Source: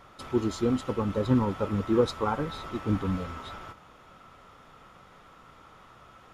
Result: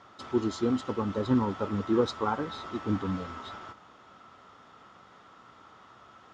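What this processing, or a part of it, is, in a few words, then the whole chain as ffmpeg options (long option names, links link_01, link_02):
car door speaker: -af "highpass=110,equalizer=frequency=150:width_type=q:width=4:gain=-8,equalizer=frequency=520:width_type=q:width=4:gain=-4,equalizer=frequency=2400:width_type=q:width=4:gain=-5,lowpass=frequency=7000:width=0.5412,lowpass=frequency=7000:width=1.3066"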